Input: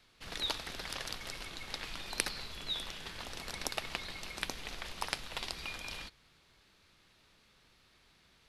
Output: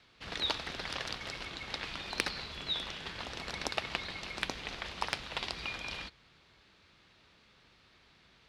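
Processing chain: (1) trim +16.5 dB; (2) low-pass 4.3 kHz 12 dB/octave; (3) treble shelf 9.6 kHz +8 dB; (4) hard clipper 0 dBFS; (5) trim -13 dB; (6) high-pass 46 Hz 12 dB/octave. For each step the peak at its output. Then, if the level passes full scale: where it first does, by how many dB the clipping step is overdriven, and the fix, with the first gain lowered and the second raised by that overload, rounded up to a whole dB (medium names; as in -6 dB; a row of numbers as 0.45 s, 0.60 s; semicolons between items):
+8.0 dBFS, +5.0 dBFS, +5.5 dBFS, 0.0 dBFS, -13.0 dBFS, -12.5 dBFS; step 1, 5.5 dB; step 1 +10.5 dB, step 5 -7 dB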